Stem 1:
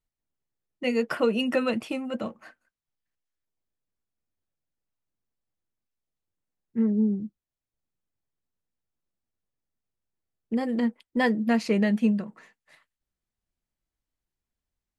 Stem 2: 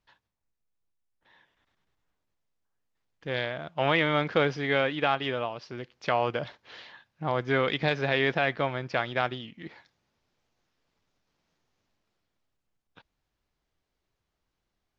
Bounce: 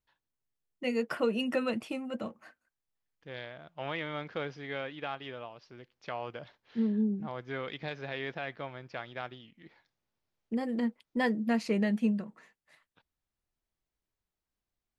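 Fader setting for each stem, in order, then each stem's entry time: −5.5, −12.0 decibels; 0.00, 0.00 seconds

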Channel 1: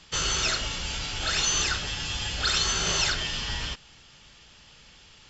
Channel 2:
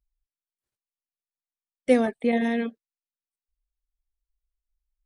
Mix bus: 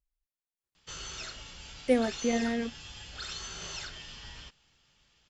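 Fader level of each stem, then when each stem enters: −15.0, −5.5 decibels; 0.75, 0.00 seconds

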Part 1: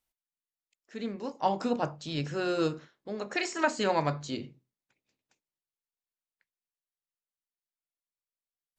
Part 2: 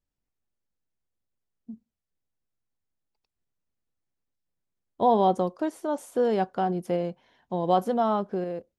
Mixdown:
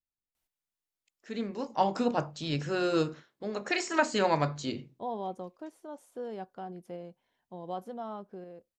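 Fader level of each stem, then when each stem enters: +1.0, −15.0 decibels; 0.35, 0.00 seconds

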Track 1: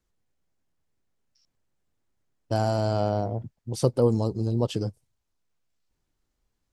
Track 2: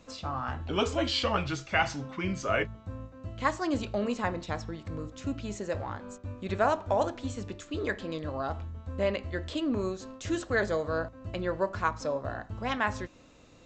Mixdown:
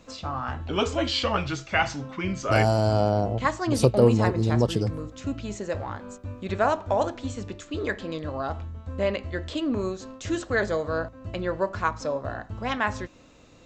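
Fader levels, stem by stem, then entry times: +3.0, +3.0 decibels; 0.00, 0.00 seconds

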